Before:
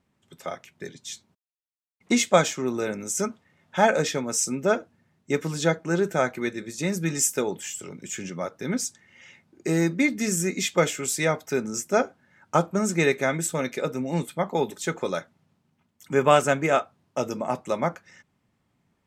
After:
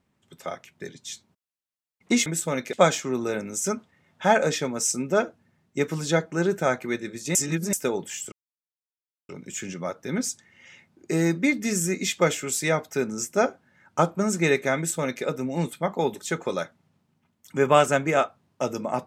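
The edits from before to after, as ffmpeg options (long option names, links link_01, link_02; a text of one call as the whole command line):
ffmpeg -i in.wav -filter_complex "[0:a]asplit=6[link_01][link_02][link_03][link_04][link_05][link_06];[link_01]atrim=end=2.262[link_07];[link_02]atrim=start=13.328:end=13.802[link_08];[link_03]atrim=start=2.258:end=6.882[link_09];[link_04]atrim=start=6.878:end=7.262,asetpts=PTS-STARTPTS,areverse[link_10];[link_05]atrim=start=7.258:end=7.85,asetpts=PTS-STARTPTS,afade=type=out:start_time=0.588:duration=0.004:curve=hsin,apad=pad_dur=0.97[link_11];[link_06]atrim=start=7.85,asetpts=PTS-STARTPTS,afade=type=in:duration=0.004:curve=hsin[link_12];[link_07][link_08]acrossfade=duration=0.004:curve1=hsin:curve2=hsin[link_13];[link_13][link_09]acrossfade=duration=0.004:curve1=hsin:curve2=hsin[link_14];[link_14][link_10]acrossfade=duration=0.004:curve1=hsin:curve2=hsin[link_15];[link_11][link_12]concat=n=2:v=0:a=1[link_16];[link_15][link_16]acrossfade=duration=0.004:curve1=hsin:curve2=hsin" out.wav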